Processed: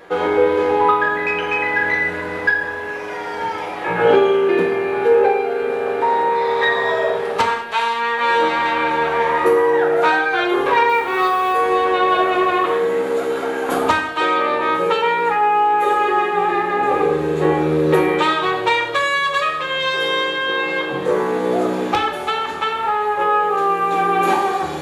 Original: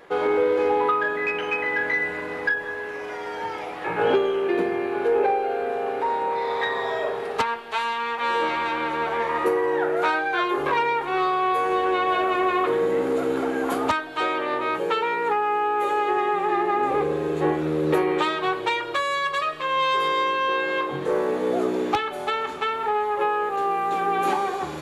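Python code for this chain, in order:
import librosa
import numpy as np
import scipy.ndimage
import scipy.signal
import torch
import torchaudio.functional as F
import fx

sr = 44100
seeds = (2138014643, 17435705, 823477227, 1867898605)

y = fx.quant_float(x, sr, bits=4, at=(10.89, 11.53))
y = fx.low_shelf(y, sr, hz=440.0, db=-9.0, at=(12.66, 13.69))
y = fx.rev_gated(y, sr, seeds[0], gate_ms=240, shape='falling', drr_db=2.5)
y = F.gain(torch.from_numpy(y), 4.5).numpy()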